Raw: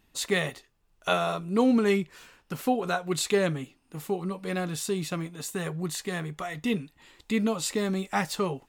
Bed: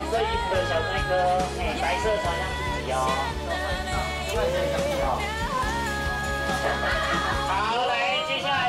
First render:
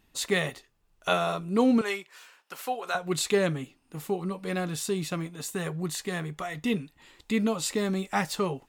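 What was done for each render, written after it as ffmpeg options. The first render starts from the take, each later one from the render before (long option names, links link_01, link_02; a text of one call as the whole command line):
ffmpeg -i in.wav -filter_complex "[0:a]asettb=1/sr,asplit=3[link_01][link_02][link_03];[link_01]atrim=end=1.814[link_04];[link_02]atrim=start=1.81:end=2.95,asetpts=PTS-STARTPTS,afade=type=in:duration=0.004:curve=qsin,afade=type=out:start_time=1.136:duration=0.004:curve=qsin,highpass=670[link_05];[link_03]atrim=start=2.946[link_06];[link_04][link_05]acrossfade=duration=0.004:curve1=hsin:curve2=qsin[link_07];[link_07][link_06]acrossfade=duration=0.004:curve1=qsin:curve2=hsin" out.wav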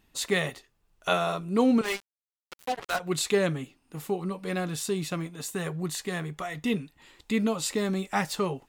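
ffmpeg -i in.wav -filter_complex "[0:a]asettb=1/sr,asplit=3[link_01][link_02][link_03];[link_01]atrim=end=1.834[link_04];[link_02]atrim=start=1.83:end=3,asetpts=PTS-STARTPTS,afade=type=in:duration=0.004:curve=qsin,afade=type=out:start_time=1.166:duration=0.004:curve=qsin,acrusher=bits=4:mix=0:aa=0.5[link_05];[link_03]atrim=start=2.996[link_06];[link_04][link_05]acrossfade=duration=0.004:curve1=hsin:curve2=qsin[link_07];[link_07][link_06]acrossfade=duration=0.004:curve1=qsin:curve2=hsin" out.wav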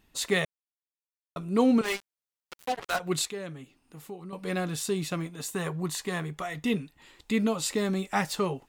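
ffmpeg -i in.wav -filter_complex "[0:a]asettb=1/sr,asplit=3[link_01][link_02][link_03];[link_01]atrim=end=3.254[link_04];[link_02]atrim=start=3.25:end=4.33,asetpts=PTS-STARTPTS,afade=type=in:duration=0.004:curve=qsin,afade=type=out:start_time=1.076:duration=0.004:curve=qsin,acompressor=threshold=-57dB:ratio=1.5:attack=3.2:release=140:knee=1:detection=peak[link_05];[link_03]atrim=start=4.326[link_06];[link_04][link_05]acrossfade=duration=0.004:curve1=hsin:curve2=qsin[link_07];[link_07][link_06]acrossfade=duration=0.004:curve1=qsin:curve2=hsin,asettb=1/sr,asplit=3[link_08][link_09][link_10];[link_08]atrim=end=5.534[link_11];[link_09]atrim=start=5.53:end=6.21,asetpts=PTS-STARTPTS,afade=type=in:duration=0.004:curve=qsin,afade=type=out:start_time=0.676:duration=0.004:curve=qsin,equalizer=frequency=1000:width=3.8:gain=6.5[link_12];[link_10]atrim=start=6.206[link_13];[link_11][link_12]acrossfade=duration=0.004:curve1=hsin:curve2=qsin[link_14];[link_14][link_13]acrossfade=duration=0.004:curve1=qsin:curve2=hsin,asplit=3[link_15][link_16][link_17];[link_15]atrim=end=0.45,asetpts=PTS-STARTPTS,afade=type=out:start_time=0.446:duration=0.004:curve=hsin[link_18];[link_16]atrim=start=0.45:end=1.36,asetpts=PTS-STARTPTS,volume=0[link_19];[link_17]atrim=start=1.36,asetpts=PTS-STARTPTS,afade=type=in:duration=0.004:curve=hsin[link_20];[link_18][link_19][link_20]concat=n=3:v=0:a=1" out.wav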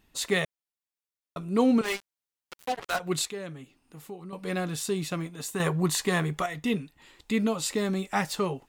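ffmpeg -i in.wav -filter_complex "[0:a]asplit=3[link_01][link_02][link_03];[link_01]atrim=end=5.602[link_04];[link_02]atrim=start=5.598:end=6.462,asetpts=PTS-STARTPTS,volume=6dB[link_05];[link_03]atrim=start=6.458[link_06];[link_04][link_05]acrossfade=duration=0.004:curve1=hsin:curve2=hsin[link_07];[link_07][link_06]acrossfade=duration=0.004:curve1=hsin:curve2=hsin" out.wav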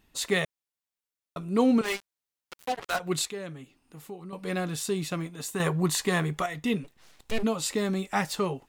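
ffmpeg -i in.wav -filter_complex "[0:a]asplit=3[link_01][link_02][link_03];[link_01]afade=type=out:start_time=6.83:duration=0.02[link_04];[link_02]aeval=exprs='abs(val(0))':channel_layout=same,afade=type=in:start_time=6.83:duration=0.02,afade=type=out:start_time=7.42:duration=0.02[link_05];[link_03]afade=type=in:start_time=7.42:duration=0.02[link_06];[link_04][link_05][link_06]amix=inputs=3:normalize=0" out.wav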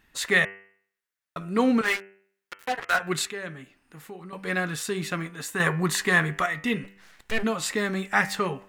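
ffmpeg -i in.wav -af "equalizer=frequency=1700:width_type=o:width=0.95:gain=11.5,bandreject=frequency=97.93:width_type=h:width=4,bandreject=frequency=195.86:width_type=h:width=4,bandreject=frequency=293.79:width_type=h:width=4,bandreject=frequency=391.72:width_type=h:width=4,bandreject=frequency=489.65:width_type=h:width=4,bandreject=frequency=587.58:width_type=h:width=4,bandreject=frequency=685.51:width_type=h:width=4,bandreject=frequency=783.44:width_type=h:width=4,bandreject=frequency=881.37:width_type=h:width=4,bandreject=frequency=979.3:width_type=h:width=4,bandreject=frequency=1077.23:width_type=h:width=4,bandreject=frequency=1175.16:width_type=h:width=4,bandreject=frequency=1273.09:width_type=h:width=4,bandreject=frequency=1371.02:width_type=h:width=4,bandreject=frequency=1468.95:width_type=h:width=4,bandreject=frequency=1566.88:width_type=h:width=4,bandreject=frequency=1664.81:width_type=h:width=4,bandreject=frequency=1762.74:width_type=h:width=4,bandreject=frequency=1860.67:width_type=h:width=4,bandreject=frequency=1958.6:width_type=h:width=4,bandreject=frequency=2056.53:width_type=h:width=4,bandreject=frequency=2154.46:width_type=h:width=4,bandreject=frequency=2252.39:width_type=h:width=4,bandreject=frequency=2350.32:width_type=h:width=4,bandreject=frequency=2448.25:width_type=h:width=4,bandreject=frequency=2546.18:width_type=h:width=4,bandreject=frequency=2644.11:width_type=h:width=4,bandreject=frequency=2742.04:width_type=h:width=4,bandreject=frequency=2839.97:width_type=h:width=4,bandreject=frequency=2937.9:width_type=h:width=4,bandreject=frequency=3035.83:width_type=h:width=4,bandreject=frequency=3133.76:width_type=h:width=4" out.wav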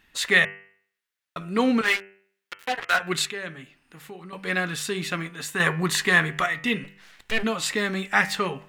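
ffmpeg -i in.wav -af "equalizer=frequency=3100:width_type=o:width=1.4:gain=5.5,bandreject=frequency=50:width_type=h:width=6,bandreject=frequency=100:width_type=h:width=6,bandreject=frequency=150:width_type=h:width=6" out.wav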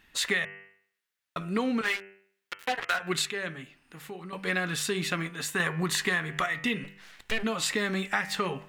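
ffmpeg -i in.wav -af "acompressor=threshold=-24dB:ratio=12" out.wav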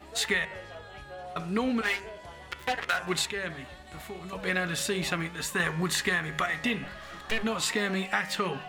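ffmpeg -i in.wav -i bed.wav -filter_complex "[1:a]volume=-19.5dB[link_01];[0:a][link_01]amix=inputs=2:normalize=0" out.wav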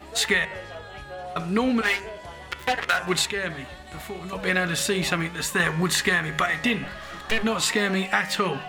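ffmpeg -i in.wav -af "volume=5.5dB" out.wav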